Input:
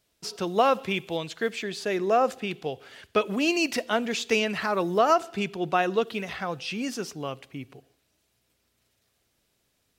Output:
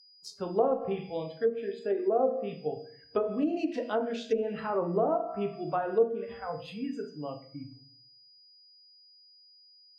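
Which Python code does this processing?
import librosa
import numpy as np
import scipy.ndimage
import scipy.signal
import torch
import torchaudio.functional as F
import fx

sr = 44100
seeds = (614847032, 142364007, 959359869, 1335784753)

y = fx.wiener(x, sr, points=9)
y = fx.dynamic_eq(y, sr, hz=500.0, q=1.6, threshold_db=-35.0, ratio=4.0, max_db=3)
y = fx.comb_fb(y, sr, f0_hz=58.0, decay_s=1.6, harmonics='all', damping=0.0, mix_pct=60)
y = fx.noise_reduce_blind(y, sr, reduce_db=24)
y = fx.room_shoebox(y, sr, seeds[0], volume_m3=42.0, walls='mixed', distance_m=0.4)
y = y + 10.0 ** (-56.0 / 20.0) * np.sin(2.0 * np.pi * 4900.0 * np.arange(len(y)) / sr)
y = fx.env_lowpass_down(y, sr, base_hz=680.0, full_db=-23.0)
y = fx.peak_eq(y, sr, hz=2200.0, db=-11.0, octaves=0.88)
y = F.gain(torch.from_numpy(y), 1.5).numpy()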